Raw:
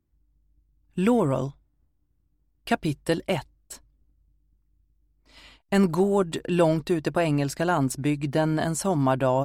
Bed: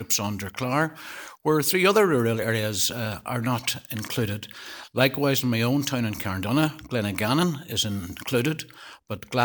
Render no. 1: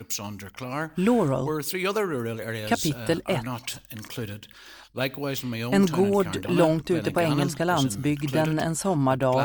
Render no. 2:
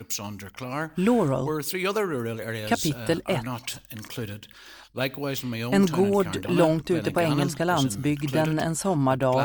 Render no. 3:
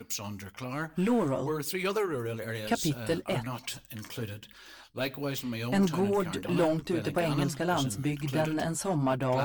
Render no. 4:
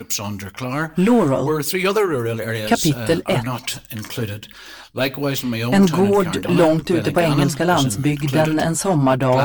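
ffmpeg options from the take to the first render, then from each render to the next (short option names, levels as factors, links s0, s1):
-filter_complex "[1:a]volume=0.447[s0];[0:a][s0]amix=inputs=2:normalize=0"
-af anull
-af "asoftclip=type=tanh:threshold=0.168,flanger=delay=4.1:depth=7.2:regen=-36:speed=1.1:shape=triangular"
-af "volume=3.98"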